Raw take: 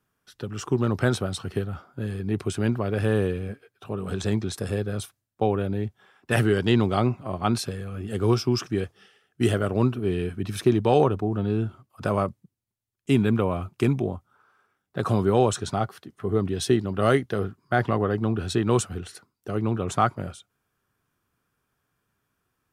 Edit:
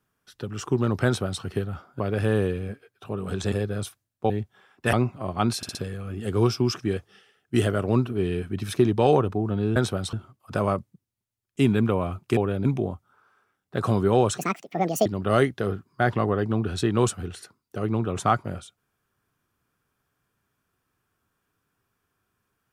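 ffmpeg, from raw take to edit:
-filter_complex "[0:a]asplit=14[a][b][c][d][e][f][g][h][i][j][k][l][m][n];[a]atrim=end=2.002[o];[b]atrim=start=2.798:end=4.322[p];[c]atrim=start=4.688:end=5.472[q];[d]atrim=start=5.748:end=6.382[r];[e]atrim=start=6.978:end=7.682[s];[f]atrim=start=7.618:end=7.682[t];[g]atrim=start=7.618:end=7.682[u];[h]atrim=start=7.618:end=11.632[v];[i]atrim=start=1.048:end=1.422[w];[j]atrim=start=11.628:end=13.872[x];[k]atrim=start=5.468:end=5.752[y];[l]atrim=start=13.868:end=15.604[z];[m]atrim=start=15.6:end=16.78,asetpts=PTS-STARTPTS,asetrate=76734,aresample=44100[aa];[n]atrim=start=16.776[ab];[o][p]acrossfade=d=0.004:c1=hsin:c2=hsin[ac];[ac][q]acrossfade=d=0.004:c1=hsin:c2=hsin[ad];[ad][r]acrossfade=d=0.004:c1=hsin:c2=hsin[ae];[ae][s]acrossfade=d=0.004:c1=hsin:c2=hsin[af];[af][t]acrossfade=d=0.004:c1=hsin:c2=hsin[ag];[ag][u]acrossfade=d=0.004:c1=hsin:c2=hsin[ah];[ah][v]acrossfade=d=0.004:c1=hsin:c2=hsin[ai];[ai][w]acrossfade=d=0.004:c1=hsin:c2=hsin[aj];[aj][x]acrossfade=d=0.004:c1=hsin:c2=hsin[ak];[ak][y]acrossfade=d=0.004:c1=hsin:c2=hsin[al];[al][z]acrossfade=d=0.004:c1=hsin:c2=hsin[am];[am][aa]acrossfade=d=0.004:c1=hsin:c2=hsin[an];[an][ab]acrossfade=d=0.004:c1=hsin:c2=hsin"

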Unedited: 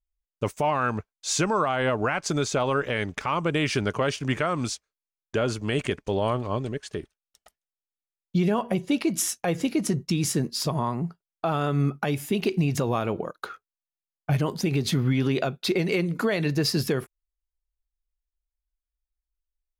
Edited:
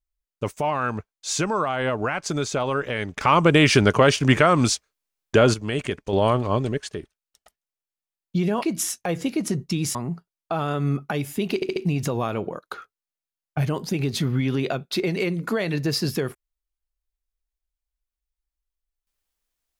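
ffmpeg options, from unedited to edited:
-filter_complex "[0:a]asplit=10[a][b][c][d][e][f][g][h][i][j];[a]atrim=end=3.212[k];[b]atrim=start=3.208:end=5.542,asetpts=PTS-STARTPTS,volume=9dB[l];[c]atrim=start=5.538:end=6.132[m];[d]atrim=start=6.128:end=6.892,asetpts=PTS-STARTPTS,volume=5.5dB[n];[e]atrim=start=6.888:end=8.622[o];[f]atrim=start=9.008:end=10.342[p];[g]atrim=start=10.878:end=12.552[q];[h]atrim=start=12.478:end=12.552[r];[i]atrim=start=12.478:end=12.552[s];[j]atrim=start=12.478[t];[k][l]acrossfade=d=0.004:c1=hsin:c2=hsin[u];[u][m]acrossfade=d=0.004:c1=hsin:c2=hsin[v];[v][n]acrossfade=d=0.004:c1=hsin:c2=hsin[w];[w][o]acrossfade=d=0.004:c1=hsin:c2=hsin[x];[x][p]acrossfade=d=0.004:c1=hsin:c2=hsin[y];[y][q]acrossfade=d=0.004:c1=hsin:c2=hsin[z];[z][r]acrossfade=d=0.004:c1=hsin:c2=hsin[aa];[aa][s]acrossfade=d=0.004:c1=hsin:c2=hsin[ab];[ab][t]acrossfade=d=0.004:c1=hsin:c2=hsin"

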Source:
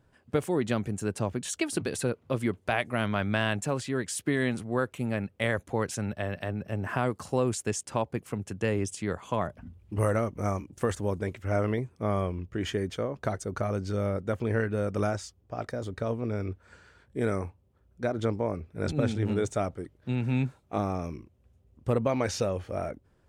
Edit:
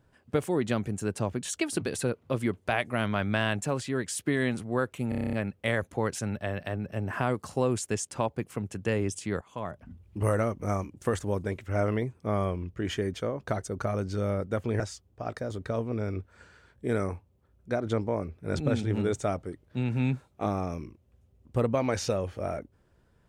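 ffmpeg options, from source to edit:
-filter_complex "[0:a]asplit=11[a][b][c][d][e][f][g][h][i][j][k];[a]atrim=end=5.122[l];[b]atrim=start=5.088:end=5.122[m];[c]atrim=start=5.088:end=5.122[n];[d]atrim=start=5.088:end=5.122[o];[e]atrim=start=5.088:end=5.122[p];[f]atrim=start=5.088:end=5.122[q];[g]atrim=start=5.088:end=5.122[r];[h]atrim=start=5.088:end=5.122[s];[i]atrim=start=5.088:end=9.17,asetpts=PTS-STARTPTS,afade=t=out:st=4.078:d=0.004:c=hsin:silence=0.211349[t];[j]atrim=start=9.17:end=14.562,asetpts=PTS-STARTPTS,afade=t=in:d=0.65:silence=0.211349[u];[k]atrim=start=15.118[v];[l][m]acrossfade=d=0.004:c1=hsin:c2=hsin[w];[w][n]acrossfade=d=0.004:c1=hsin:c2=hsin[x];[x][o]acrossfade=d=0.004:c1=hsin:c2=hsin[y];[y][p]acrossfade=d=0.004:c1=hsin:c2=hsin[z];[z][q]acrossfade=d=0.004:c1=hsin:c2=hsin[aa];[aa][r]acrossfade=d=0.004:c1=hsin:c2=hsin[ab];[ab][s]acrossfade=d=0.004:c1=hsin:c2=hsin[ac];[t][u]concat=n=2:v=0:a=1[ad];[ac][ad]acrossfade=d=0.004:c1=hsin:c2=hsin[ae];[ae][v]acrossfade=d=0.004:c1=hsin:c2=hsin"

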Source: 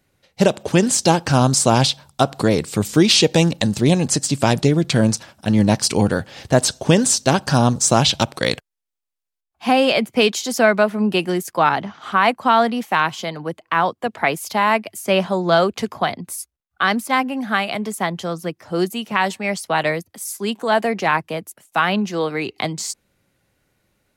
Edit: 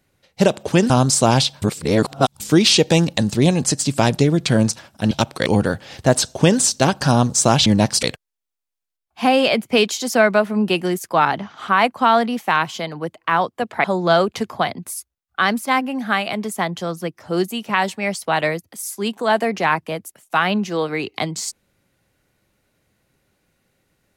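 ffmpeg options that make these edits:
-filter_complex "[0:a]asplit=9[a][b][c][d][e][f][g][h][i];[a]atrim=end=0.902[j];[b]atrim=start=1.338:end=2.062[k];[c]atrim=start=2.058:end=2.842,asetpts=PTS-STARTPTS,areverse[l];[d]atrim=start=2.838:end=5.552[m];[e]atrim=start=8.118:end=8.472[n];[f]atrim=start=5.918:end=8.122[o];[g]atrim=start=5.548:end=5.922[p];[h]atrim=start=8.468:end=14.282[q];[i]atrim=start=15.258[r];[j][k]acrossfade=d=0.004:c1=hsin:c2=hsin[s];[s][l]acrossfade=d=0.004:c1=hsin:c2=hsin[t];[t][m]acrossfade=d=0.004:c1=hsin:c2=hsin[u];[u][n]acrossfade=d=0.004:c1=hsin:c2=hsin[v];[v][o]acrossfade=d=0.004:c1=hsin:c2=hsin[w];[w][p]acrossfade=d=0.004:c1=hsin:c2=hsin[x];[x][q]acrossfade=d=0.004:c1=hsin:c2=hsin[y];[y][r]acrossfade=d=0.004:c1=hsin:c2=hsin"

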